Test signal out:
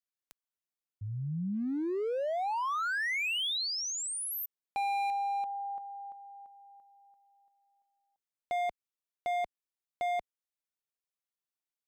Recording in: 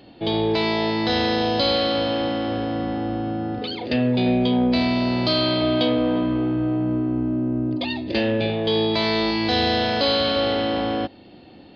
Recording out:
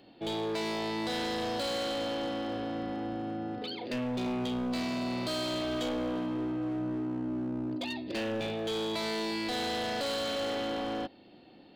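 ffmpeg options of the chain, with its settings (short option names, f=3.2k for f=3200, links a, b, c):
-filter_complex "[0:a]acrossover=split=3400[a][b];[b]acompressor=threshold=-27dB:ratio=4:attack=1:release=60[c];[a][c]amix=inputs=2:normalize=0,equalizer=f=64:t=o:w=1.6:g=-11,volume=21.5dB,asoftclip=hard,volume=-21.5dB,volume=-8.5dB"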